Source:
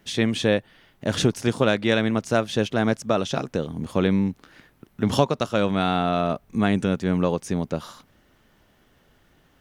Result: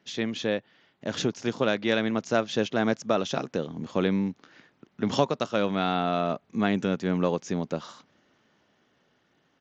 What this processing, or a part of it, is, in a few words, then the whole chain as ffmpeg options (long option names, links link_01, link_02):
Bluetooth headset: -af "highpass=160,dynaudnorm=framelen=280:gausssize=13:maxgain=11.5dB,aresample=16000,aresample=44100,volume=-6.5dB" -ar 16000 -c:a sbc -b:a 64k